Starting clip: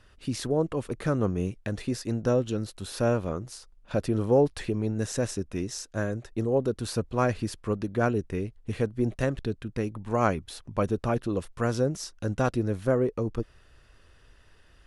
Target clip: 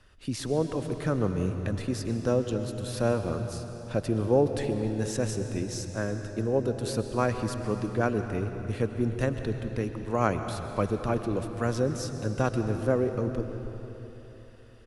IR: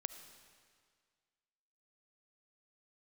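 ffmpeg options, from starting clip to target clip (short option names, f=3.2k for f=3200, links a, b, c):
-filter_complex "[0:a]acrossover=split=150|2900[a][b][c];[a]aecho=1:1:122.4|268.2:0.355|0.794[d];[c]asoftclip=type=hard:threshold=-28dB[e];[d][b][e]amix=inputs=3:normalize=0[f];[1:a]atrim=start_sample=2205,asetrate=22932,aresample=44100[g];[f][g]afir=irnorm=-1:irlink=0,volume=-2dB"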